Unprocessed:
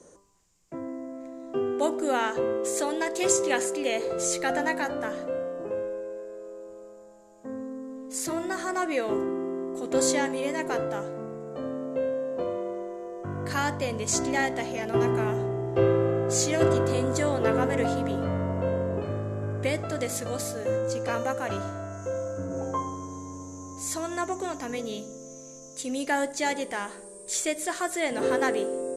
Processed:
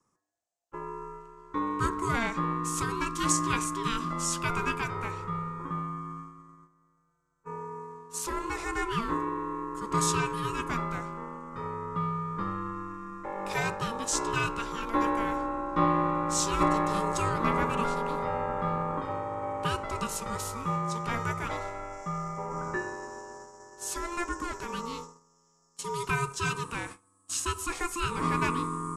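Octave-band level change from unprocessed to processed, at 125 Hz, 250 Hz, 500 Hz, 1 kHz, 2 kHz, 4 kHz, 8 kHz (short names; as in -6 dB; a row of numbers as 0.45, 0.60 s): -2.0, -3.0, -9.0, +3.0, -1.5, -1.5, -3.0 dB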